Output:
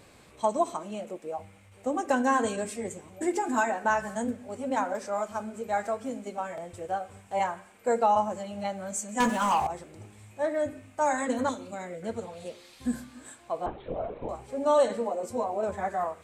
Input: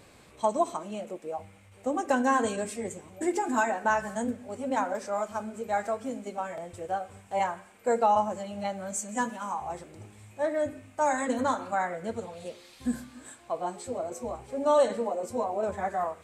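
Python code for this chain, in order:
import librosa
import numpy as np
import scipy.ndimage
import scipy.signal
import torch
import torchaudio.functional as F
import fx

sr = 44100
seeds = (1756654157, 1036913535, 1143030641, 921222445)

y = fx.leveller(x, sr, passes=3, at=(9.2, 9.67))
y = fx.band_shelf(y, sr, hz=1100.0, db=-13.5, octaves=1.7, at=(11.49, 12.03))
y = fx.lpc_vocoder(y, sr, seeds[0], excitation='whisper', order=16, at=(13.66, 14.29))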